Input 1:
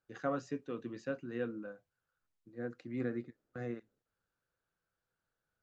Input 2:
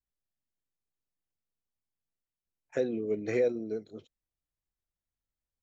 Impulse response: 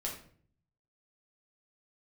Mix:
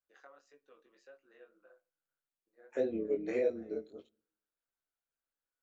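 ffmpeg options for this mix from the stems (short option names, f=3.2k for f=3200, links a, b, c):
-filter_complex "[0:a]acompressor=threshold=-40dB:ratio=6,highpass=f=470:w=0.5412,highpass=f=470:w=1.3066,acontrast=65,volume=-13.5dB,asplit=2[a][b];[b]volume=-20dB[c];[1:a]lowshelf=f=200:t=q:w=1.5:g=-11,equalizer=f=5.5k:w=2.7:g=-7,volume=-0.5dB,asplit=3[d][e][f];[e]volume=-22.5dB[g];[f]apad=whole_len=248262[h];[a][h]sidechaincompress=threshold=-37dB:ratio=8:attack=16:release=153[i];[2:a]atrim=start_sample=2205[j];[c][g]amix=inputs=2:normalize=0[k];[k][j]afir=irnorm=-1:irlink=0[l];[i][d][l]amix=inputs=3:normalize=0,flanger=delay=18:depth=4.5:speed=1.7,tremolo=f=140:d=0.462"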